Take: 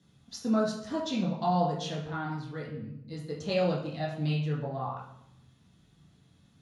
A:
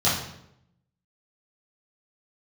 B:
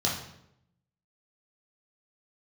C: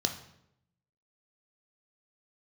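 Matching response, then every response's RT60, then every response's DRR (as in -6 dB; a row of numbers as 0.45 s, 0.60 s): B; 0.80 s, 0.80 s, 0.80 s; -12.0 dB, -5.5 dB, 3.5 dB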